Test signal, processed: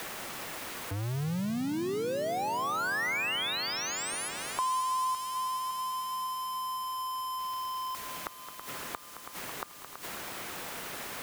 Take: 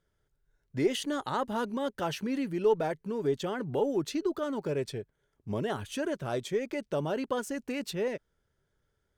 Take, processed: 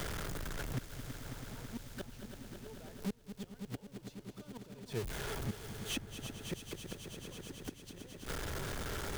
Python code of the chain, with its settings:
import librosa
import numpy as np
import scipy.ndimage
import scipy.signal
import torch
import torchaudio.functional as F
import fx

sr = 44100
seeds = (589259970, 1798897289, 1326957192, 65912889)

y = x + 0.5 * 10.0 ** (-33.5 / 20.0) * np.sign(x)
y = fx.gate_flip(y, sr, shuts_db=-25.0, range_db=-39)
y = fx.echo_heads(y, sr, ms=109, heads='second and third', feedback_pct=74, wet_db=-13.0)
y = fx.band_squash(y, sr, depth_pct=70)